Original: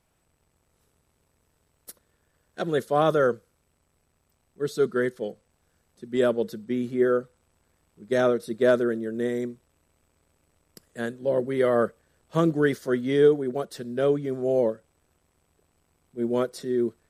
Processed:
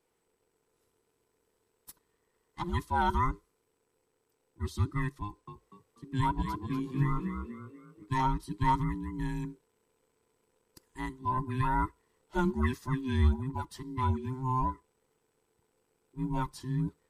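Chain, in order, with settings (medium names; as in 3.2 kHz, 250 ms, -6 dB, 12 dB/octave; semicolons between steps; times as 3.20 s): every band turned upside down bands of 500 Hz; 5.23–8.06 s: frequency-shifting echo 243 ms, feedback 38%, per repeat +46 Hz, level -7.5 dB; trim -6.5 dB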